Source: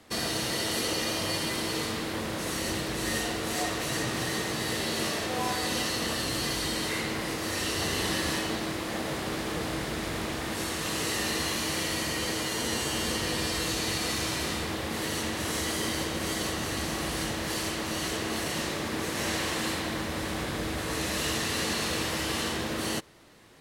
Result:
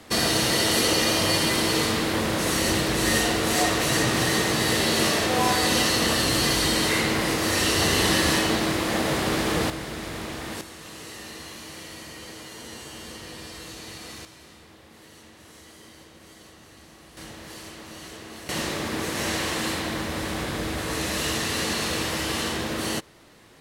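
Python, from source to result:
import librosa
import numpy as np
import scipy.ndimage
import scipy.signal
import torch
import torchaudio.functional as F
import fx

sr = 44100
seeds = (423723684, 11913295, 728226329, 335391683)

y = fx.gain(x, sr, db=fx.steps((0.0, 8.0), (9.7, -1.0), (10.61, -10.0), (14.25, -18.0), (17.17, -9.5), (18.49, 3.0)))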